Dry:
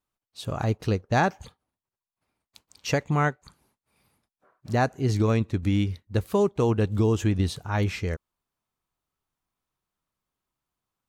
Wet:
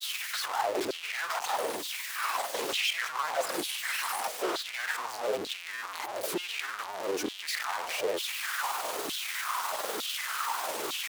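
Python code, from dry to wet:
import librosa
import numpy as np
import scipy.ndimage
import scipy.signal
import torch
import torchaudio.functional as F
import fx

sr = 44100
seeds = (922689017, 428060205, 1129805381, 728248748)

y = np.sign(x) * np.sqrt(np.mean(np.square(x)))
y = fx.filter_lfo_highpass(y, sr, shape='saw_down', hz=1.1, low_hz=340.0, high_hz=3700.0, q=4.4)
y = fx.granulator(y, sr, seeds[0], grain_ms=100.0, per_s=20.0, spray_ms=18.0, spread_st=3)
y = y * librosa.db_to_amplitude(-4.5)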